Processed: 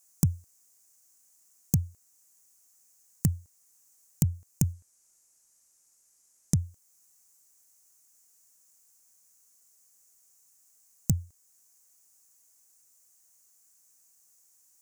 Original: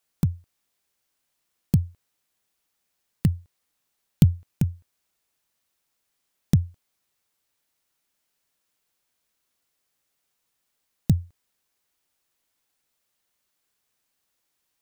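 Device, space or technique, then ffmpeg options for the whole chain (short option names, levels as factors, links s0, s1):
over-bright horn tweeter: -filter_complex "[0:a]highshelf=f=4900:t=q:w=3:g=12,alimiter=limit=0.447:level=0:latency=1:release=491,asettb=1/sr,asplit=3[s0][s1][s2];[s0]atrim=end=4.734[s3];[s1]atrim=start=4.73:end=6.57,asetpts=PTS-STARTPTS,afade=t=in:d=0.004:c=qsin,afade=t=out:st=1.836:d=0.004:c=qsin,lowpass=11000[s4];[s2]atrim=start=6.566[s5];[s3][s4]acrossfade=d=0.004:c1=hsin:c2=qsin[s6];[s6][s5]acrossfade=d=0.004:c1=qsin:c2=hsin"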